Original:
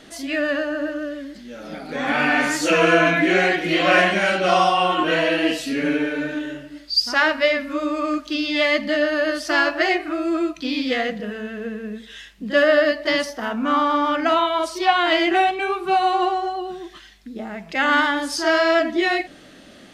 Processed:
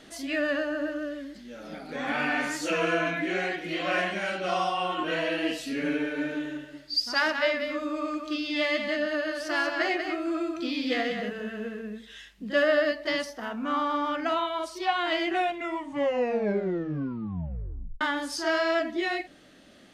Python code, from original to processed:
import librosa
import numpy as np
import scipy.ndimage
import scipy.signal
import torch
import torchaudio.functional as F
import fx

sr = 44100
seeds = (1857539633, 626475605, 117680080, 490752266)

y = fx.echo_single(x, sr, ms=188, db=-6.5, at=(6.16, 11.8), fade=0.02)
y = fx.edit(y, sr, fx.tape_stop(start_s=15.31, length_s=2.7), tone=tone)
y = fx.rider(y, sr, range_db=4, speed_s=2.0)
y = y * librosa.db_to_amplitude(-9.0)